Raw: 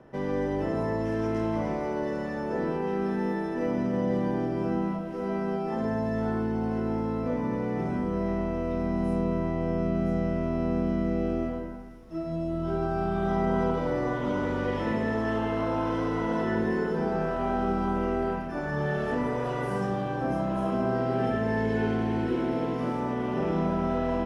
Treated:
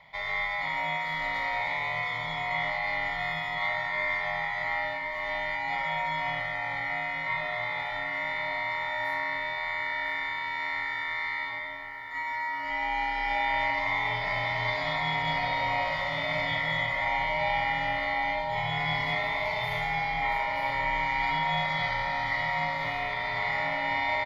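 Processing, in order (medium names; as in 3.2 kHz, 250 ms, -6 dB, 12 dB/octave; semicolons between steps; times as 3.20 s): high-pass 440 Hz 12 dB/octave; ring modulator 1.6 kHz; static phaser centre 1.8 kHz, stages 8; doubling 33 ms -13 dB; filtered feedback delay 1061 ms, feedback 55%, low-pass 1.6 kHz, level -5 dB; trim +8 dB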